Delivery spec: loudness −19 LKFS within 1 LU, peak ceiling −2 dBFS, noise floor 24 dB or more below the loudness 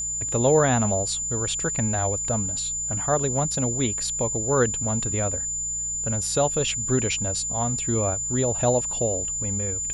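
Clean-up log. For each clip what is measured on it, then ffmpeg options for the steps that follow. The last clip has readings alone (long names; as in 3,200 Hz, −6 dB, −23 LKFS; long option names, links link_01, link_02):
mains hum 60 Hz; hum harmonics up to 180 Hz; level of the hum −43 dBFS; interfering tone 7,100 Hz; level of the tone −26 dBFS; integrated loudness −23.0 LKFS; sample peak −8.0 dBFS; target loudness −19.0 LKFS
→ -af "bandreject=frequency=60:width_type=h:width=4,bandreject=frequency=120:width_type=h:width=4,bandreject=frequency=180:width_type=h:width=4"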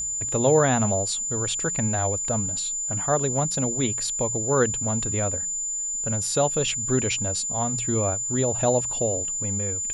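mains hum none found; interfering tone 7,100 Hz; level of the tone −26 dBFS
→ -af "bandreject=frequency=7100:width=30"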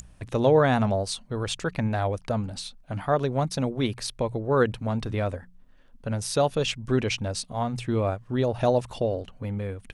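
interfering tone none found; integrated loudness −26.5 LKFS; sample peak −8.5 dBFS; target loudness −19.0 LKFS
→ -af "volume=7.5dB,alimiter=limit=-2dB:level=0:latency=1"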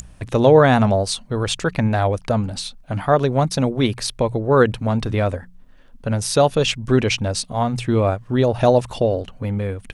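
integrated loudness −19.0 LKFS; sample peak −2.0 dBFS; background noise floor −46 dBFS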